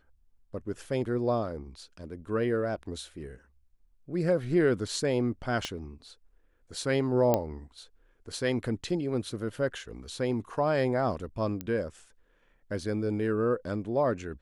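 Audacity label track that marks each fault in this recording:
5.650000	5.650000	pop -18 dBFS
7.340000	7.340000	pop -11 dBFS
11.610000	11.610000	pop -20 dBFS

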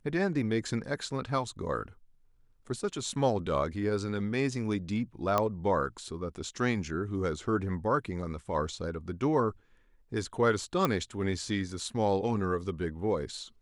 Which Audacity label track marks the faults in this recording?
5.380000	5.380000	pop -13 dBFS
10.850000	10.850000	pop -13 dBFS

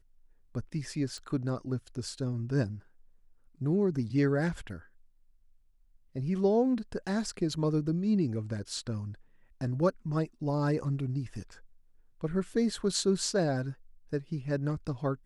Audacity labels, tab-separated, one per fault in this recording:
1.180000	1.180000	pop

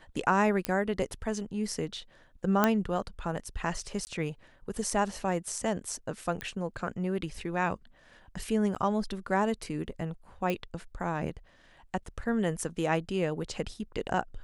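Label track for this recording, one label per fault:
0.650000	0.650000	pop -13 dBFS
2.640000	2.640000	pop -9 dBFS
4.050000	4.070000	dropout 19 ms
6.410000	6.410000	pop -19 dBFS
8.750000	8.760000	dropout 8.5 ms
10.500000	10.500000	pop -18 dBFS

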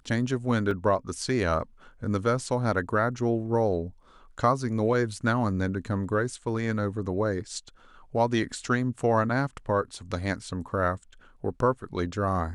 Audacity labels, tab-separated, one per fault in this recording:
0.710000	0.710000	dropout 3 ms

